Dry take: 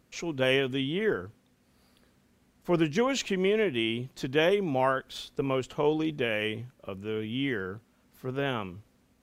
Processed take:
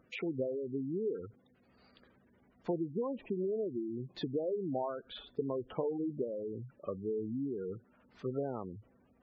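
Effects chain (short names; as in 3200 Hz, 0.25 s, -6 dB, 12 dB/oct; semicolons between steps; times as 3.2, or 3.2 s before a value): compressor 10:1, threshold -31 dBFS, peak gain reduction 12 dB; LPF 5200 Hz 12 dB/oct; low shelf 250 Hz -8.5 dB; treble ducked by the level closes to 800 Hz, closed at -35.5 dBFS; spectral gate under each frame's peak -15 dB strong; gain +3.5 dB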